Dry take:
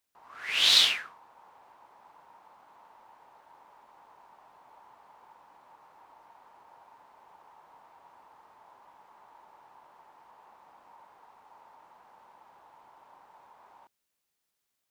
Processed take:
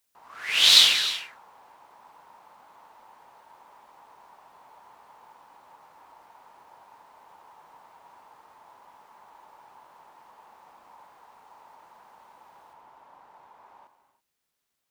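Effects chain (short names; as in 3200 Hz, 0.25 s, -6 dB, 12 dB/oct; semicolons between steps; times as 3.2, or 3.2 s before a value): high shelf 4000 Hz +5.5 dB, from 12.73 s -3 dB; non-linear reverb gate 0.35 s flat, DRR 8.5 dB; gain +2.5 dB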